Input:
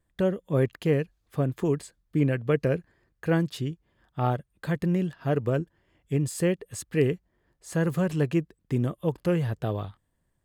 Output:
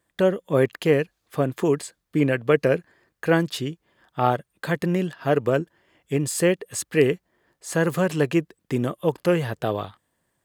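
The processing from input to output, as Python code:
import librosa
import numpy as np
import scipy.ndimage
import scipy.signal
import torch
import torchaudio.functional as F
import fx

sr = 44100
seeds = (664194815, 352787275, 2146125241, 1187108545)

y = fx.highpass(x, sr, hz=390.0, slope=6)
y = y * 10.0 ** (8.5 / 20.0)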